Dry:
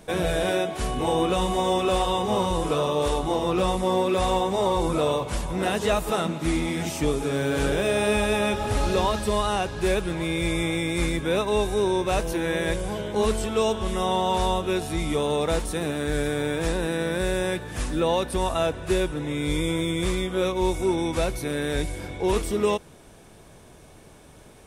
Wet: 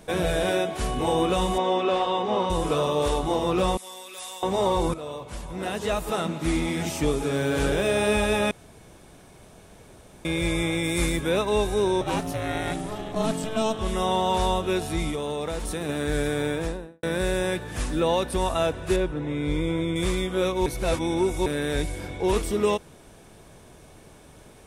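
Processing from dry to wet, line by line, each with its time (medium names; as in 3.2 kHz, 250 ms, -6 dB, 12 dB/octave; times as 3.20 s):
1.58–2.50 s: band-pass 220–3700 Hz
3.77–4.43 s: differentiator
4.94–6.58 s: fade in, from -14.5 dB
8.51–10.25 s: room tone
10.83–11.29 s: treble shelf 7 kHz -> 10 kHz +10 dB
12.01–13.79 s: ring modulator 220 Hz
15.09–15.89 s: compression, threshold -25 dBFS
16.45–17.03 s: studio fade out
18.96–19.96 s: low-pass 1.8 kHz 6 dB/octave
20.66–21.46 s: reverse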